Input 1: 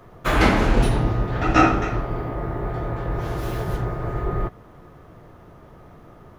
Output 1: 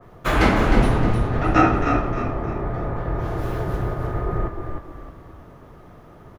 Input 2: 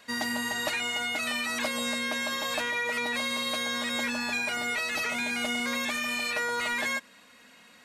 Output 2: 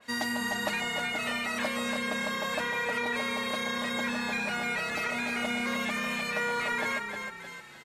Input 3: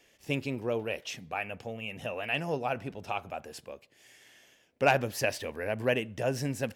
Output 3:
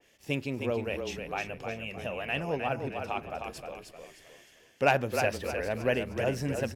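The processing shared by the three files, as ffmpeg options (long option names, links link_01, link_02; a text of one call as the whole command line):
ffmpeg -i in.wav -filter_complex "[0:a]asplit=6[link_01][link_02][link_03][link_04][link_05][link_06];[link_02]adelay=308,afreqshift=-32,volume=-6dB[link_07];[link_03]adelay=616,afreqshift=-64,volume=-14.2dB[link_08];[link_04]adelay=924,afreqshift=-96,volume=-22.4dB[link_09];[link_05]adelay=1232,afreqshift=-128,volume=-30.5dB[link_10];[link_06]adelay=1540,afreqshift=-160,volume=-38.7dB[link_11];[link_01][link_07][link_08][link_09][link_10][link_11]amix=inputs=6:normalize=0,adynamicequalizer=threshold=0.00794:dfrequency=2400:dqfactor=0.7:tfrequency=2400:tqfactor=0.7:attack=5:release=100:ratio=0.375:range=3.5:mode=cutabove:tftype=highshelf" out.wav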